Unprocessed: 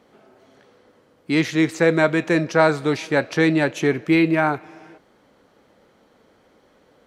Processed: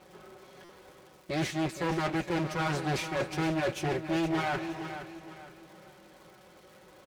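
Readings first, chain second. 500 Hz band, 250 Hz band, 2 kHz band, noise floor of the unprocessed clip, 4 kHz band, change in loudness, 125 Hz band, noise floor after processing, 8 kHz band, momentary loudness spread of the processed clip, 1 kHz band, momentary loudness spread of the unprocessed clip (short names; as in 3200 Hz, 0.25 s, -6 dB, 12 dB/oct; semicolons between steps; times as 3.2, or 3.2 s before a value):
-13.0 dB, -12.0 dB, -12.5 dB, -58 dBFS, -7.0 dB, -12.0 dB, -8.0 dB, -56 dBFS, -6.0 dB, 16 LU, -8.0 dB, 6 LU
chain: minimum comb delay 5.4 ms; HPF 46 Hz; reverse; compressor 6:1, threshold -29 dBFS, peak gain reduction 14 dB; reverse; crackle 330/s -50 dBFS; vibrato 7.2 Hz 8.2 cents; hard clip -28 dBFS, distortion -13 dB; notch comb 230 Hz; on a send: feedback echo 0.466 s, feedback 36%, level -10.5 dB; on the sum: stuck buffer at 0.64, samples 256, times 8; Doppler distortion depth 0.22 ms; gain +3.5 dB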